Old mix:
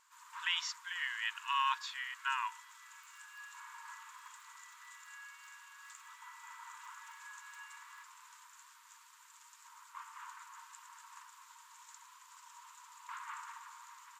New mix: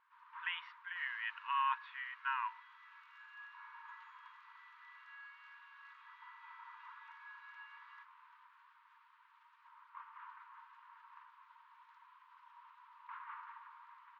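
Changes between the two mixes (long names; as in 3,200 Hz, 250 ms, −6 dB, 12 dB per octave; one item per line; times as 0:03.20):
speech: add low-pass filter 2,600 Hz 24 dB per octave
first sound: add high-frequency loss of the air 350 metres
master: add high-frequency loss of the air 220 metres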